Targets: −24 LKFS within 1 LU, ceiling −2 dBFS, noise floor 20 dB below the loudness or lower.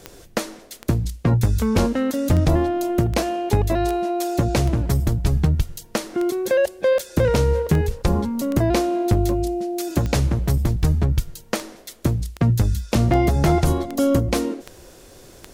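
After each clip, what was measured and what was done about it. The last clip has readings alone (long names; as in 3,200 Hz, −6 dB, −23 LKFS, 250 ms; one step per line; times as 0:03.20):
number of clicks 21; integrated loudness −21.5 LKFS; sample peak −7.5 dBFS; target loudness −24.0 LKFS
→ click removal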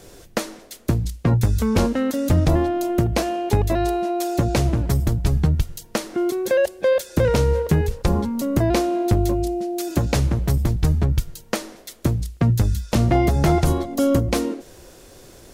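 number of clicks 0; integrated loudness −21.5 LKFS; sample peak −7.5 dBFS; target loudness −24.0 LKFS
→ level −2.5 dB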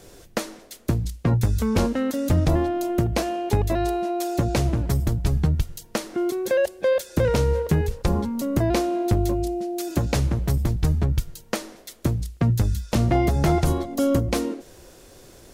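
integrated loudness −24.0 LKFS; sample peak −10.0 dBFS; background noise floor −49 dBFS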